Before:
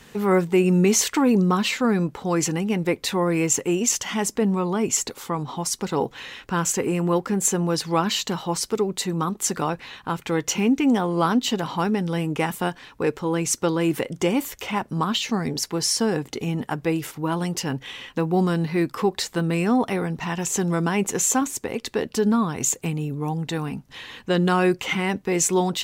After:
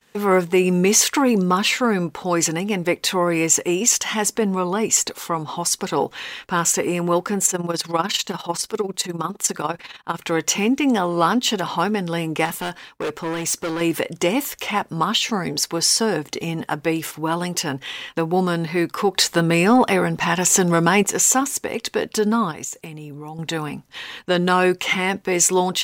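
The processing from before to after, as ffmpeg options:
-filter_complex "[0:a]asplit=3[a][b][c];[a]afade=t=out:st=7.44:d=0.02[d];[b]tremolo=f=20:d=0.73,afade=t=in:st=7.44:d=0.02,afade=t=out:st=10.18:d=0.02[e];[c]afade=t=in:st=10.18:d=0.02[f];[d][e][f]amix=inputs=3:normalize=0,asettb=1/sr,asplit=3[g][h][i];[g]atrim=end=12.454[j];[h]atrim=start=12.45:end=13.81,asetpts=PTS-STARTPTS,afade=t=in:d=0.004:c=qsin,afade=t=out:st=1.356:d=0.004:c=qsin,asoftclip=type=hard:threshold=-24.5dB[k];[i]atrim=start=13.806[l];[j][k]acrossfade=d=0.004:c1=hsin:c2=qsin[m];[m][l]acrossfade=d=0.004:c1=qsin:c2=hsin,asettb=1/sr,asplit=3[n][o][p];[n]atrim=end=19.154[q];[o]atrim=start=19.15:end=21.03,asetpts=PTS-STARTPTS,afade=t=in:d=0.004:c=qsin,afade=t=out:st=1.876:d=0.004:c=qsin,acontrast=20[r];[p]atrim=start=21.026[s];[q][r]acrossfade=d=0.004:c1=hsin:c2=qsin[t];[t][s]acrossfade=d=0.004:c1=qsin:c2=hsin,asettb=1/sr,asplit=3[u][v][w];[u]atrim=end=22.514[x];[v]atrim=start=22.51:end=23.39,asetpts=PTS-STARTPTS,afade=t=in:d=0.004:c=qsin,afade=t=out:st=0.876:d=0.004:c=qsin,acompressor=threshold=-31dB:ratio=12:attack=3.2:release=140:knee=1:detection=peak[y];[w]atrim=start=23.386[z];[x][y]acrossfade=d=0.004:c1=hsin:c2=qsin[aa];[aa][z]acrossfade=d=0.004:c1=qsin:c2=hsin,agate=range=-33dB:threshold=-39dB:ratio=3:detection=peak,lowshelf=f=310:g=-9,acontrast=43"

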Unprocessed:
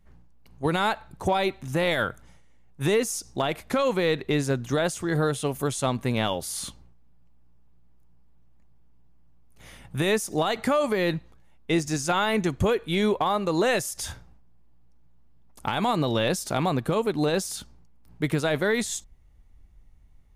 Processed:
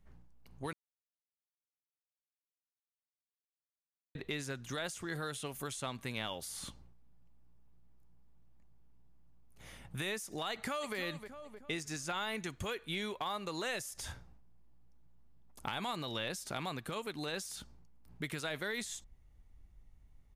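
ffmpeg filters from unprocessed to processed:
-filter_complex "[0:a]asplit=2[a][b];[b]afade=t=in:st=10.51:d=0.01,afade=t=out:st=10.96:d=0.01,aecho=0:1:310|620|930|1240:0.251189|0.087916|0.0307706|0.0107697[c];[a][c]amix=inputs=2:normalize=0,asplit=3[d][e][f];[d]atrim=end=0.73,asetpts=PTS-STARTPTS,afade=t=out:st=0.726:d=0.004:c=hsin[g];[e]atrim=start=0.73:end=4.15,asetpts=PTS-STARTPTS,volume=0[h];[f]atrim=start=4.15,asetpts=PTS-STARTPTS,afade=t=in:d=0.004:c=hsin[i];[g][h][i]concat=n=3:v=0:a=1,acrossover=split=1300|2900[j][k][l];[j]acompressor=threshold=-36dB:ratio=4[m];[k]acompressor=threshold=-35dB:ratio=4[n];[l]acompressor=threshold=-38dB:ratio=4[o];[m][n][o]amix=inputs=3:normalize=0,volume=-5.5dB"

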